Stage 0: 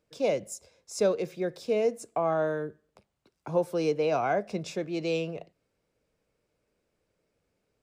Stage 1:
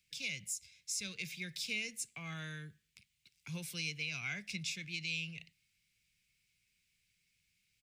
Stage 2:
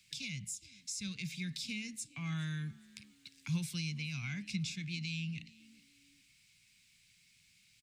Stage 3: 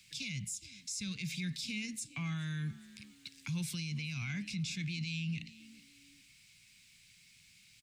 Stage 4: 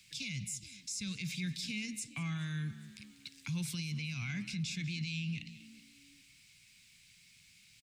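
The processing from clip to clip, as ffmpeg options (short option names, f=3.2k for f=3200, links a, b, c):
-filter_complex "[0:a]firequalizer=gain_entry='entry(160,0);entry(300,-17);entry(620,-28);entry(2200,14);entry(4800,12)':delay=0.05:min_phase=1,acrossover=split=150[a][b];[b]alimiter=limit=-23dB:level=0:latency=1:release=327[c];[a][c]amix=inputs=2:normalize=0,volume=-5dB"
-filter_complex "[0:a]acrossover=split=220[a][b];[b]acompressor=threshold=-59dB:ratio=2.5[c];[a][c]amix=inputs=2:normalize=0,equalizer=f=125:t=o:w=1:g=5,equalizer=f=250:t=o:w=1:g=8,equalizer=f=500:t=o:w=1:g=-7,equalizer=f=1k:t=o:w=1:g=7,equalizer=f=2k:t=o:w=1:g=3,equalizer=f=4k:t=o:w=1:g=7,equalizer=f=8k:t=o:w=1:g=7,asplit=3[d][e][f];[e]adelay=414,afreqshift=59,volume=-23dB[g];[f]adelay=828,afreqshift=118,volume=-32.6dB[h];[d][g][h]amix=inputs=3:normalize=0,volume=4dB"
-af "alimiter=level_in=11.5dB:limit=-24dB:level=0:latency=1:release=39,volume=-11.5dB,volume=5dB"
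-filter_complex "[0:a]asplit=2[a][b];[b]adelay=192.4,volume=-15dB,highshelf=f=4k:g=-4.33[c];[a][c]amix=inputs=2:normalize=0"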